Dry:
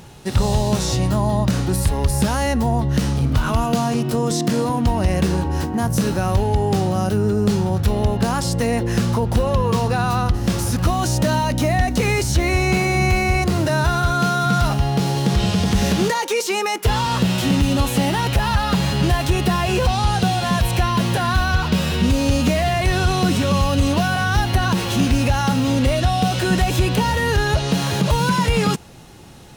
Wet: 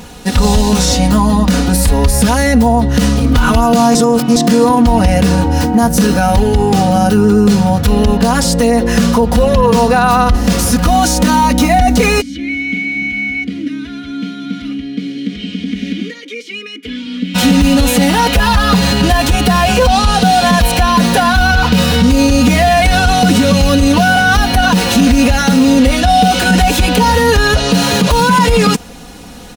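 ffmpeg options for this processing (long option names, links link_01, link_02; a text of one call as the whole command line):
ffmpeg -i in.wav -filter_complex "[0:a]asplit=3[link_01][link_02][link_03];[link_01]afade=type=out:start_time=12.2:duration=0.02[link_04];[link_02]asplit=3[link_05][link_06][link_07];[link_05]bandpass=frequency=270:width_type=q:width=8,volume=0dB[link_08];[link_06]bandpass=frequency=2290:width_type=q:width=8,volume=-6dB[link_09];[link_07]bandpass=frequency=3010:width_type=q:width=8,volume=-9dB[link_10];[link_08][link_09][link_10]amix=inputs=3:normalize=0,afade=type=in:start_time=12.2:duration=0.02,afade=type=out:start_time=17.34:duration=0.02[link_11];[link_03]afade=type=in:start_time=17.34:duration=0.02[link_12];[link_04][link_11][link_12]amix=inputs=3:normalize=0,asplit=3[link_13][link_14][link_15];[link_13]atrim=end=3.952[link_16];[link_14]atrim=start=3.948:end=4.362,asetpts=PTS-STARTPTS,areverse[link_17];[link_15]atrim=start=4.358[link_18];[link_16][link_17]acrossfade=duration=0.004:curve1=hsin:curve2=hsin[link_19];[link_19][link_18]acrossfade=duration=0.004:curve1=hsin:curve2=hsin,aecho=1:1:4.1:0.99,alimiter=limit=-9.5dB:level=0:latency=1:release=36,volume=8dB" out.wav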